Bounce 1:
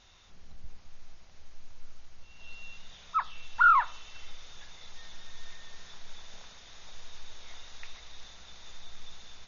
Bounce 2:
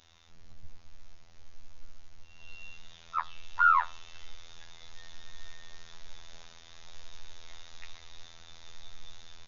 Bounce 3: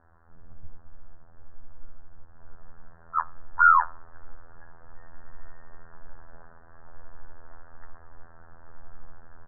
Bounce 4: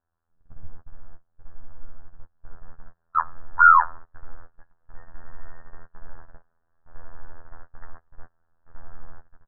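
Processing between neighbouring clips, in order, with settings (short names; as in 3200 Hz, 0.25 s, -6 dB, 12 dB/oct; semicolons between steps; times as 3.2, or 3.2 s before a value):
robotiser 83.2 Hz
steep low-pass 1700 Hz 96 dB/oct; gain +5.5 dB
gate -35 dBFS, range -27 dB; gain +4 dB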